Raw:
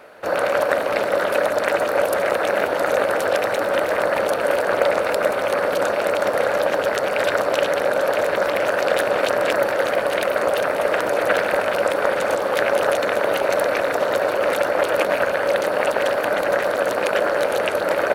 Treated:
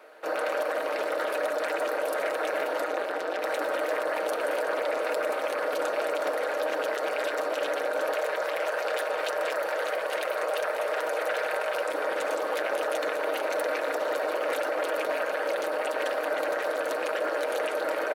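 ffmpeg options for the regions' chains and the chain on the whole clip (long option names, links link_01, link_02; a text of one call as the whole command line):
ffmpeg -i in.wav -filter_complex "[0:a]asettb=1/sr,asplit=3[link_01][link_02][link_03];[link_01]atrim=end=2.864[link_04];[link_02]atrim=start=2.86:end=3.44,asetpts=PTS-STARTPTS,afade=type=in:duration=0.004:curve=qsin,afade=type=out:start_time=0.576:duration=0.004:curve=qsin,bass=frequency=250:gain=3,treble=frequency=4000:gain=6,tremolo=f=180:d=0.71,acrossover=split=4600[link_05][link_06];[link_06]acompressor=threshold=-47dB:ratio=4:attack=1:release=60[link_07];[link_05][link_07]amix=inputs=2:normalize=0[link_08];[link_03]atrim=start=3.436[link_09];[link_04][link_08]acrossfade=duration=0.004:curve1=hsin:curve2=qsin[link_10];[link_10][link_09]acrossfade=duration=0.004:curve1=qsin:curve2=hsin,asettb=1/sr,asplit=3[link_11][link_12][link_13];[link_11]atrim=end=8.144[link_14];[link_12]atrim=start=8.14:end=11.88,asetpts=PTS-STARTPTS,afade=type=in:duration=0.004:curve=qsin,afade=type=out:start_time=3.736:duration=0.004:curve=qsin,equalizer=frequency=270:width=3:gain=-14.5,asoftclip=type=hard:threshold=-9.5dB[link_15];[link_13]atrim=start=11.876[link_16];[link_14][link_15]acrossfade=duration=0.004:curve1=hsin:curve2=qsin[link_17];[link_17][link_16]acrossfade=duration=0.004:curve1=qsin:curve2=hsin,highpass=frequency=280:width=0.5412,highpass=frequency=280:width=1.3066,aecho=1:1:6.4:0.44,alimiter=limit=-12dB:level=0:latency=1:release=24,volume=-7.5dB" out.wav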